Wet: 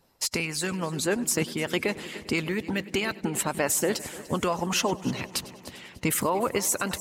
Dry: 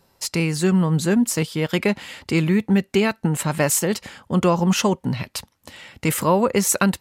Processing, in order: multi-head echo 99 ms, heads first and third, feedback 64%, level -18 dB; harmonic-percussive split harmonic -15 dB; limiter -15 dBFS, peak gain reduction 9.5 dB

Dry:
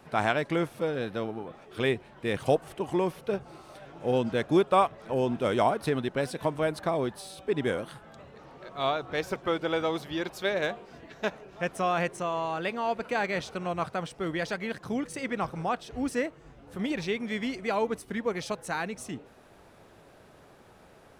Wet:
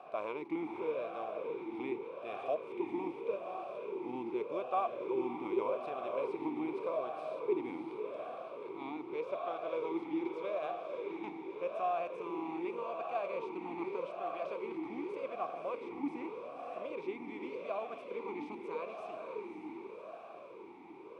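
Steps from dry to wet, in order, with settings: per-bin compression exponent 0.6; diffused feedback echo 0.56 s, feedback 57%, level -4 dB; vowel sweep a-u 0.84 Hz; gain -5.5 dB

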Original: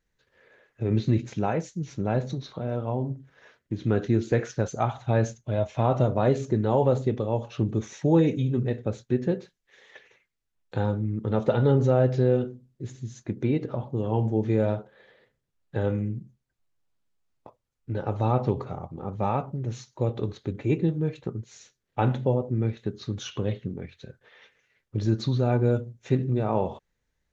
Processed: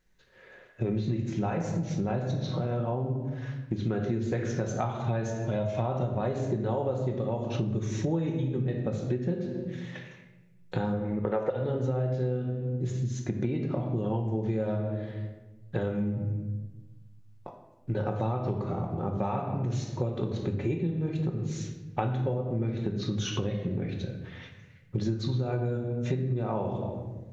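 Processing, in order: 10.94–11.5 graphic EQ 125/250/500/1000/2000/4000 Hz -7/-3/+9/+5/+11/-8 dB; reverb RT60 1.0 s, pre-delay 5 ms, DRR 2.5 dB; compressor 8:1, threshold -30 dBFS, peak gain reduction 21 dB; gain +4 dB

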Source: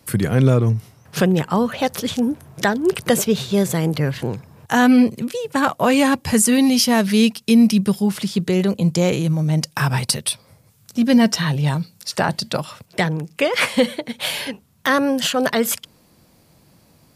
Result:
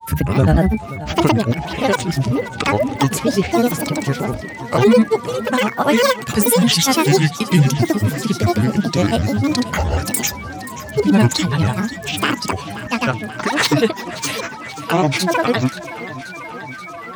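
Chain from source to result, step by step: whine 1200 Hz -32 dBFS; grains, pitch spread up and down by 12 st; warbling echo 0.53 s, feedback 70%, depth 54 cents, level -16 dB; gain +2.5 dB

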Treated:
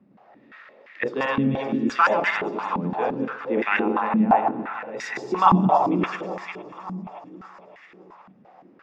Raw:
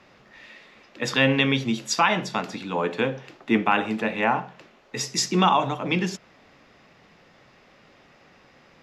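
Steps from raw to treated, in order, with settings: regenerating reverse delay 0.105 s, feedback 44%, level -1 dB; echo with dull and thin repeats by turns 0.283 s, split 1400 Hz, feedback 68%, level -8 dB; stepped band-pass 5.8 Hz 210–1900 Hz; gain +8 dB

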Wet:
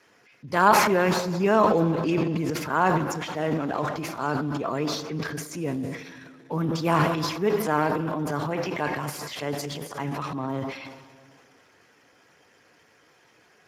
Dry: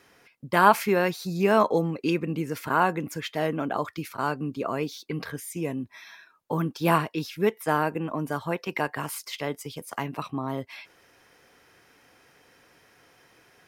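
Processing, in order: 2.98–3.92 G.711 law mismatch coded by A; plate-style reverb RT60 2.4 s, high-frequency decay 0.85×, DRR 10.5 dB; transient shaper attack -3 dB, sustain +11 dB; Speex 15 kbps 32000 Hz

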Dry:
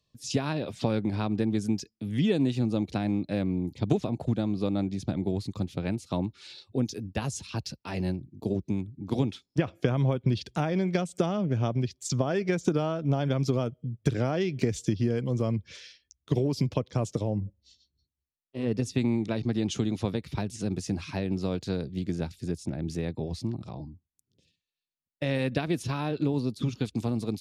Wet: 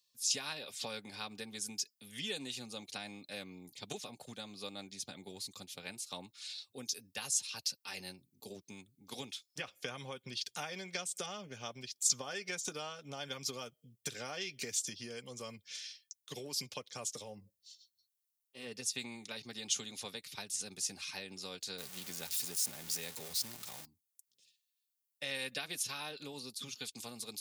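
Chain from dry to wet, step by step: 21.78–23.85 zero-crossing step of -36.5 dBFS; differentiator; notch comb 330 Hz; gain +8 dB

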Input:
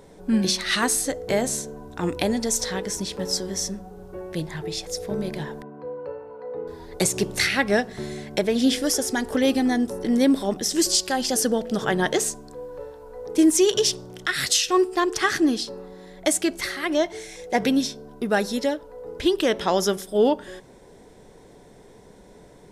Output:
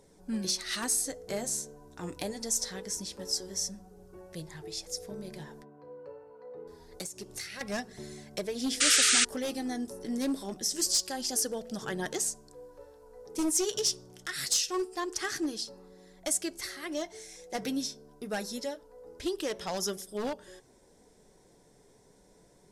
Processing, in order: one-sided fold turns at -14 dBFS; band shelf 7600 Hz +8 dB; 5.06–7.61 compressor 16:1, threshold -24 dBFS, peak gain reduction 13.5 dB; flange 0.25 Hz, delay 0.3 ms, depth 7.3 ms, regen -57%; 8.8–9.25 painted sound noise 1200–9400 Hz -15 dBFS; gain -8.5 dB

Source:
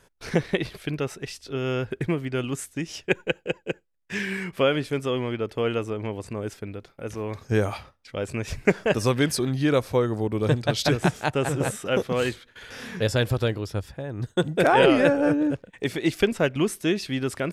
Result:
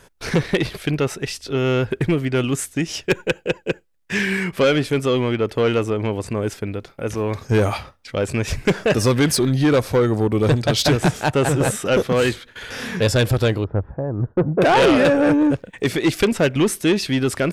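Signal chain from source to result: 13.64–14.62 LPF 1200 Hz 24 dB/oct; soft clip -19.5 dBFS, distortion -10 dB; gain +9 dB

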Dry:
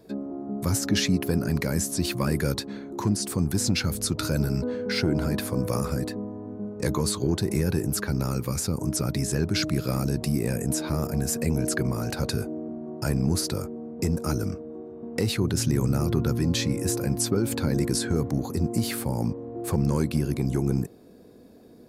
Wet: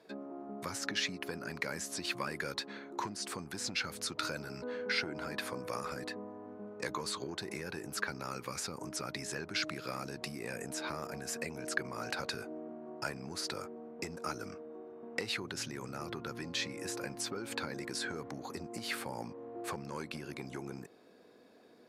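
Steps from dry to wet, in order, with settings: compressor, threshold -25 dBFS, peak gain reduction 7.5 dB; band-pass 1900 Hz, Q 0.67; gain +1 dB

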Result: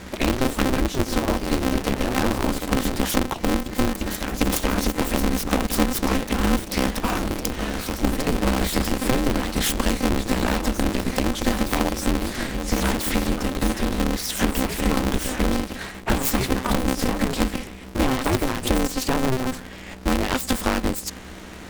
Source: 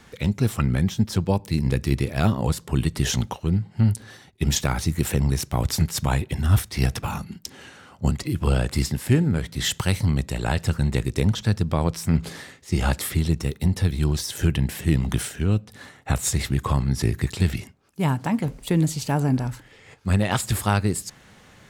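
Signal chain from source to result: self-modulated delay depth 0.16 ms; compressor, threshold -28 dBFS, peak gain reduction 15 dB; hum 60 Hz, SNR 17 dB; echoes that change speed 80 ms, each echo +2 st, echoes 3, each echo -6 dB; polarity switched at an audio rate 130 Hz; gain +9 dB

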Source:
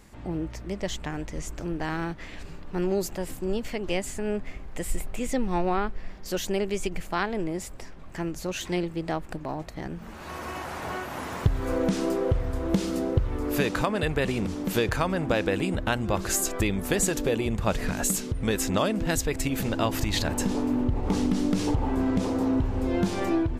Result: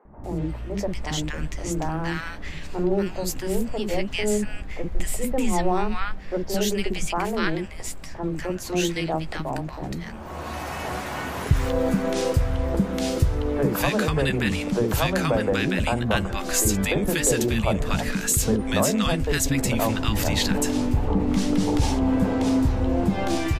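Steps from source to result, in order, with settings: doubler 14 ms -12 dB; three bands offset in time mids, lows, highs 50/240 ms, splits 360/1200 Hz; in parallel at -1 dB: limiter -18.5 dBFS, peak gain reduction 8 dB

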